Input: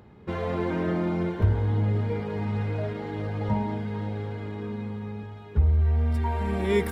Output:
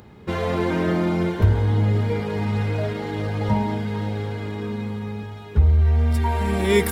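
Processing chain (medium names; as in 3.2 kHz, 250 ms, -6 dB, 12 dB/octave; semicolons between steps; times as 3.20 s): treble shelf 3.7 kHz +11 dB; trim +5 dB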